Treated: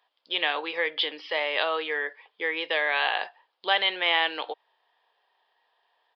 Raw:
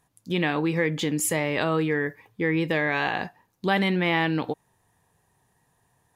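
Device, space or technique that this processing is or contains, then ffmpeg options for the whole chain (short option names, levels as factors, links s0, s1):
musical greeting card: -af "aresample=11025,aresample=44100,highpass=f=520:w=0.5412,highpass=f=520:w=1.3066,equalizer=f=3200:t=o:w=0.35:g=11"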